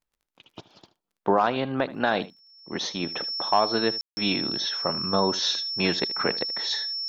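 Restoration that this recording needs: de-click; band-stop 5.4 kHz, Q 30; room tone fill 4.01–4.17 s; inverse comb 77 ms -18 dB

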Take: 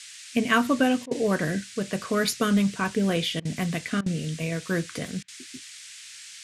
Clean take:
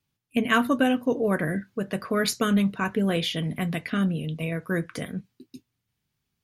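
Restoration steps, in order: interpolate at 1.06/3.40/4.01/5.23 s, 50 ms; noise print and reduce 30 dB

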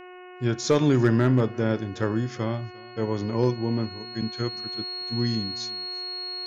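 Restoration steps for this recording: clip repair -11.5 dBFS; de-hum 363.4 Hz, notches 8; band-stop 4.3 kHz, Q 30; inverse comb 350 ms -24 dB

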